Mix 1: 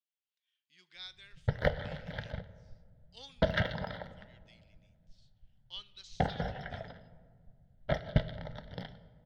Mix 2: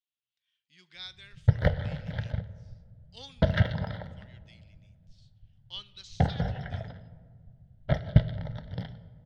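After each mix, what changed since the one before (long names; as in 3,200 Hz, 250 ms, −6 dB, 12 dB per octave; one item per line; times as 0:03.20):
speech +4.0 dB
master: add parametric band 100 Hz +12 dB 1.7 octaves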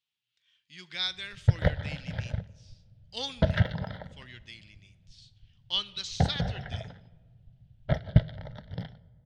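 speech +11.5 dB
background: send −8.5 dB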